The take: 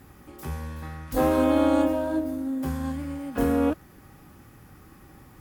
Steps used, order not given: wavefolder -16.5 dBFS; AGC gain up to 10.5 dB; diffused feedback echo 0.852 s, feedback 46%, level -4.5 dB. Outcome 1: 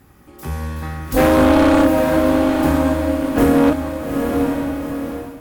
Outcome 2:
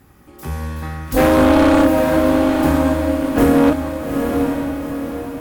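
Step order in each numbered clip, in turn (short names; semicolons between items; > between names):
wavefolder > diffused feedback echo > AGC; wavefolder > AGC > diffused feedback echo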